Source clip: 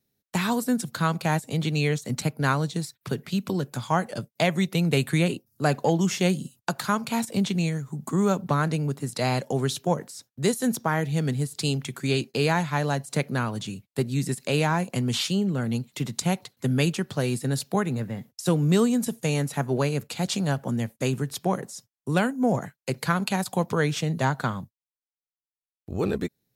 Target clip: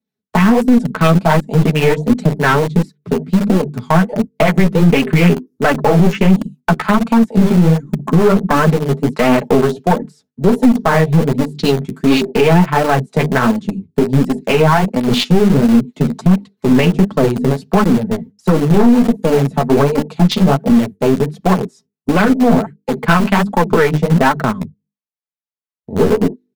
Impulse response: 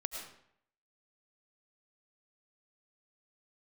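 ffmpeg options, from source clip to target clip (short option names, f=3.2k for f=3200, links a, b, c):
-filter_complex "[0:a]bandreject=f=50:t=h:w=6,bandreject=f=100:t=h:w=6,bandreject=f=150:t=h:w=6,bandreject=f=200:t=h:w=6,bandreject=f=250:t=h:w=6,bandreject=f=300:t=h:w=6,bandreject=f=350:t=h:w=6,bandreject=f=400:t=h:w=6,bandreject=f=450:t=h:w=6,afwtdn=0.0251,highpass=f=89:w=0.5412,highpass=f=89:w=1.3066,aemphasis=mode=reproduction:type=75kf,aecho=1:1:4.6:0.65,acrossover=split=600[a][b];[a]aeval=exprs='val(0)*(1-0.5/2+0.5/2*cos(2*PI*4.3*n/s))':c=same[c];[b]aeval=exprs='val(0)*(1-0.5/2-0.5/2*cos(2*PI*4.3*n/s))':c=same[d];[c][d]amix=inputs=2:normalize=0,asplit=2[e][f];[f]aeval=exprs='val(0)*gte(abs(val(0)),0.0422)':c=same,volume=-4.5dB[g];[e][g]amix=inputs=2:normalize=0,aeval=exprs='(tanh(7.08*val(0)+0.4)-tanh(0.4))/7.08':c=same,flanger=delay=3.5:depth=9.3:regen=7:speed=1.4:shape=sinusoidal,alimiter=level_in=21dB:limit=-1dB:release=50:level=0:latency=1,volume=-1dB"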